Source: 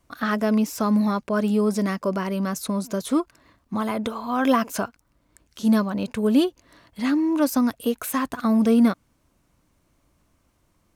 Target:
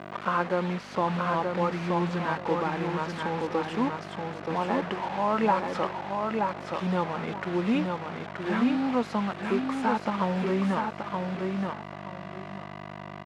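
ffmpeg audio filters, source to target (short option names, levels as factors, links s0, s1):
-filter_complex "[0:a]adynamicequalizer=threshold=0.0126:dfrequency=500:dqfactor=1.7:tfrequency=500:tqfactor=1.7:attack=5:release=100:ratio=0.375:range=4:mode=cutabove:tftype=bell,asplit=2[s0][s1];[s1]acompressor=threshold=0.0398:ratio=4,volume=0.708[s2];[s0][s2]amix=inputs=2:normalize=0,aeval=exprs='val(0)+0.0316*(sin(2*PI*60*n/s)+sin(2*PI*2*60*n/s)/2+sin(2*PI*3*60*n/s)/3+sin(2*PI*4*60*n/s)/4+sin(2*PI*5*60*n/s)/5)':c=same,acrusher=bits=4:mix=0:aa=0.000001,asetrate=36471,aresample=44100,acrusher=bits=6:mode=log:mix=0:aa=0.000001,highpass=330,lowpass=2100,asplit=2[s3][s4];[s4]aecho=0:1:926|1852|2778:0.631|0.139|0.0305[s5];[s3][s5]amix=inputs=2:normalize=0,volume=0.794"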